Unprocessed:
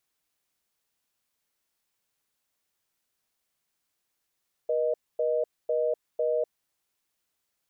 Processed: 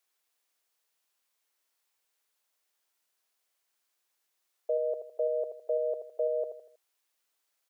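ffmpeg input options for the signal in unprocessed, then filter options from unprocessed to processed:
-f lavfi -i "aevalsrc='0.0501*(sin(2*PI*480*t)+sin(2*PI*620*t))*clip(min(mod(t,0.5),0.25-mod(t,0.5))/0.005,0,1)':d=1.82:s=44100"
-filter_complex "[0:a]highpass=420,asplit=2[s0][s1];[s1]aecho=0:1:80|160|240|320:0.355|0.138|0.054|0.021[s2];[s0][s2]amix=inputs=2:normalize=0"

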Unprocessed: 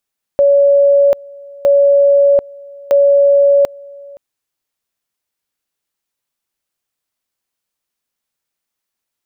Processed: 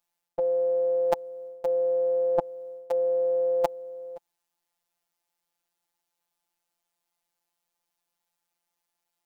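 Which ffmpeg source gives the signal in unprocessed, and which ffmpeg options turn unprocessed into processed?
-f lavfi -i "aevalsrc='pow(10,(-6-25*gte(mod(t,1.26),0.74))/20)*sin(2*PI*564*t)':d=3.78:s=44100"
-af "equalizer=f=800:t=o:w=0.35:g=14,areverse,acompressor=threshold=0.158:ratio=20,areverse,afftfilt=real='hypot(re,im)*cos(PI*b)':imag='0':win_size=1024:overlap=0.75"

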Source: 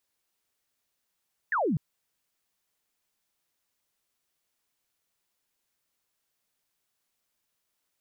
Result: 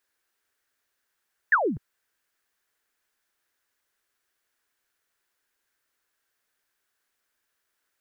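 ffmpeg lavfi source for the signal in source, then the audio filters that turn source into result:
-f lavfi -i "aevalsrc='0.0668*clip(t/0.002,0,1)*clip((0.25-t)/0.002,0,1)*sin(2*PI*1900*0.25/log(130/1900)*(exp(log(130/1900)*t/0.25)-1))':d=0.25:s=44100"
-af "equalizer=f=160:t=o:w=0.67:g=-8,equalizer=f=400:t=o:w=0.67:g=4,equalizer=f=1600:t=o:w=0.67:g=11"

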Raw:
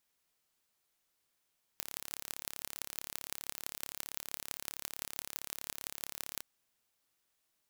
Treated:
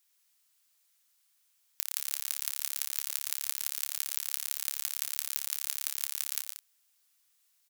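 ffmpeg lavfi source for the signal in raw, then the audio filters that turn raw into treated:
-f lavfi -i "aevalsrc='0.355*eq(mod(n,1246),0)*(0.5+0.5*eq(mod(n,7476),0))':d=4.63:s=44100"
-af "highpass=1000,highshelf=f=3200:g=9,aecho=1:1:116.6|183.7:0.447|0.251"

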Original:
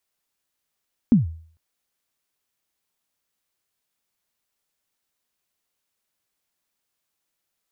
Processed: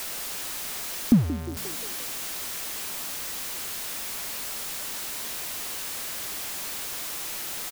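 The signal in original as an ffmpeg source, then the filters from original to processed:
-f lavfi -i "aevalsrc='0.398*pow(10,-3*t/0.5)*sin(2*PI*(260*0.143/log(81/260)*(exp(log(81/260)*min(t,0.143)/0.143)-1)+81*max(t-0.143,0)))':d=0.45:s=44100"
-filter_complex "[0:a]aeval=exprs='val(0)+0.5*0.0422*sgn(val(0))':c=same,equalizer=f=99:t=o:w=1.3:g=-4,asplit=6[s0][s1][s2][s3][s4][s5];[s1]adelay=176,afreqshift=55,volume=0.188[s6];[s2]adelay=352,afreqshift=110,volume=0.104[s7];[s3]adelay=528,afreqshift=165,volume=0.0569[s8];[s4]adelay=704,afreqshift=220,volume=0.0313[s9];[s5]adelay=880,afreqshift=275,volume=0.0172[s10];[s0][s6][s7][s8][s9][s10]amix=inputs=6:normalize=0"

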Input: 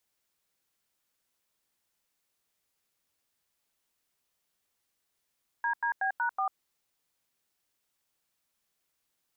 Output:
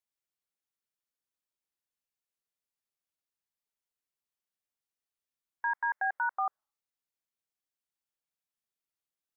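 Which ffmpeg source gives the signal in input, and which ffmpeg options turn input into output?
-f lavfi -i "aevalsrc='0.0355*clip(min(mod(t,0.186),0.095-mod(t,0.186))/0.002,0,1)*(eq(floor(t/0.186),0)*(sin(2*PI*941*mod(t,0.186))+sin(2*PI*1633*mod(t,0.186)))+eq(floor(t/0.186),1)*(sin(2*PI*941*mod(t,0.186))+sin(2*PI*1633*mod(t,0.186)))+eq(floor(t/0.186),2)*(sin(2*PI*770*mod(t,0.186))+sin(2*PI*1633*mod(t,0.186)))+eq(floor(t/0.186),3)*(sin(2*PI*941*mod(t,0.186))+sin(2*PI*1477*mod(t,0.186)))+eq(floor(t/0.186),4)*(sin(2*PI*770*mod(t,0.186))+sin(2*PI*1209*mod(t,0.186))))':d=0.93:s=44100"
-af "afftdn=nr=15:nf=-60"

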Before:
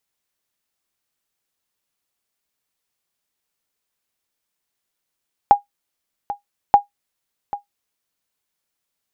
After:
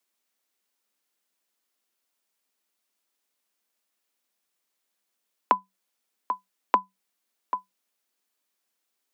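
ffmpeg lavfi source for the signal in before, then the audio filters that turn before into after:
-f lavfi -i "aevalsrc='0.891*(sin(2*PI*814*mod(t,1.23))*exp(-6.91*mod(t,1.23)/0.13)+0.168*sin(2*PI*814*max(mod(t,1.23)-0.79,0))*exp(-6.91*max(mod(t,1.23)-0.79,0)/0.13))':d=2.46:s=44100"
-af "acompressor=threshold=0.112:ratio=4,afreqshift=190"

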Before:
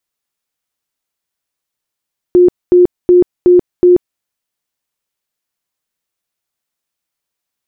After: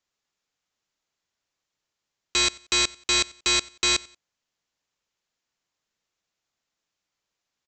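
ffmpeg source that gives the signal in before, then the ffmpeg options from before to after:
-f lavfi -i "aevalsrc='0.708*sin(2*PI*357*mod(t,0.37))*lt(mod(t,0.37),48/357)':d=1.85:s=44100"
-af "aresample=16000,aeval=exprs='(mod(5.62*val(0)+1,2)-1)/5.62':c=same,aresample=44100,aecho=1:1:91|182:0.0708|0.0219"

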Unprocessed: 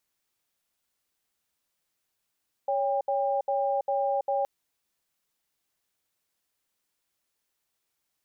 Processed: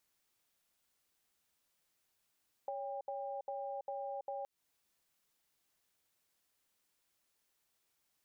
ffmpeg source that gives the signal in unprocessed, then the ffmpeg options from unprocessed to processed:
-f lavfi -i "aevalsrc='0.0473*(sin(2*PI*558*t)+sin(2*PI*800*t))*clip(min(mod(t,0.4),0.33-mod(t,0.4))/0.005,0,1)':d=1.77:s=44100"
-af "alimiter=level_in=1.78:limit=0.0631:level=0:latency=1:release=247,volume=0.562,acompressor=threshold=0.0112:ratio=6"

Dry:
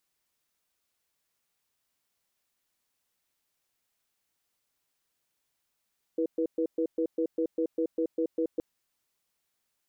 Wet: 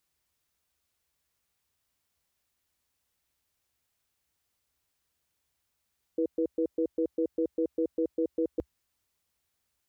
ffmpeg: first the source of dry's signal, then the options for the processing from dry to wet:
-f lavfi -i "aevalsrc='0.0422*(sin(2*PI*326*t)+sin(2*PI*486*t))*clip(min(mod(t,0.2),0.08-mod(t,0.2))/0.005,0,1)':d=2.42:s=44100"
-af "equalizer=f=67:w=1.1:g=14"

